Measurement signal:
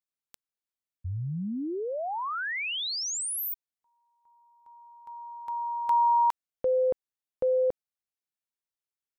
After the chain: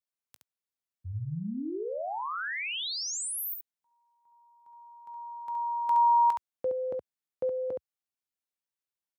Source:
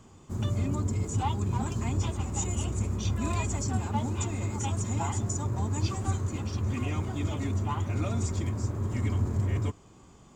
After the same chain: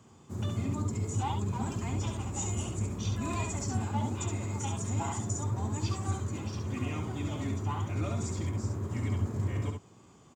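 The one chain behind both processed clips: high-pass 77 Hz 24 dB/octave; on a send: early reflections 19 ms -15 dB, 69 ms -5 dB; on the sum: trim -3.5 dB

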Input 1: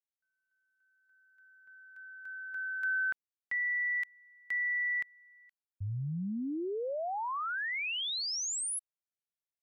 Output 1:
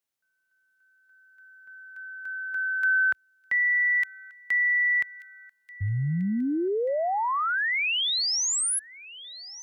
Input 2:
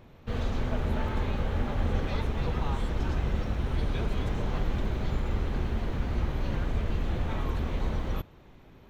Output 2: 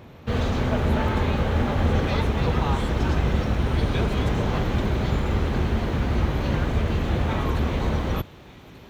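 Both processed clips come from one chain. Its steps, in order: high-pass 58 Hz; on a send: feedback echo behind a high-pass 1185 ms, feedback 48%, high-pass 2.6 kHz, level -15.5 dB; on the sum: trim +9 dB

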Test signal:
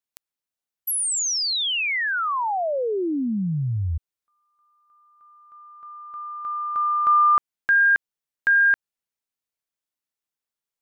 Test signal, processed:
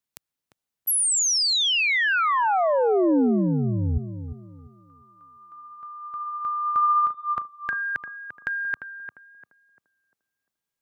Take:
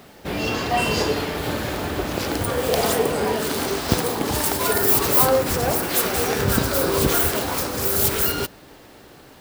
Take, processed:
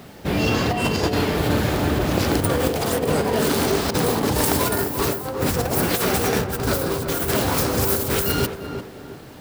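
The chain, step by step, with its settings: peaking EQ 120 Hz +6.5 dB 2.3 oct; compressor with a negative ratio -21 dBFS, ratio -0.5; tape echo 347 ms, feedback 42%, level -6 dB, low-pass 1.2 kHz

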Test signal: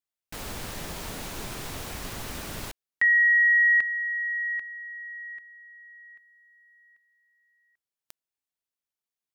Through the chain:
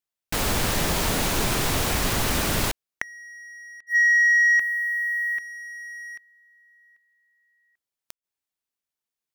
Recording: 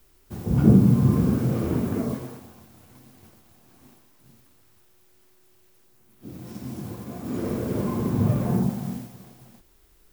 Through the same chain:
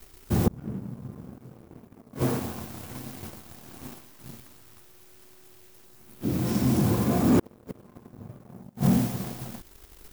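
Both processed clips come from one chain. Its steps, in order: inverted gate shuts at -18 dBFS, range -33 dB; waveshaping leveller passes 2; trim +5.5 dB

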